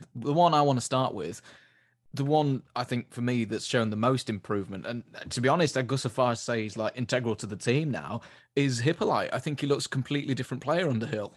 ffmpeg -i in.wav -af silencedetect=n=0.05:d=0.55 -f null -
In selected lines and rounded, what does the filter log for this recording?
silence_start: 1.28
silence_end: 2.17 | silence_duration: 0.89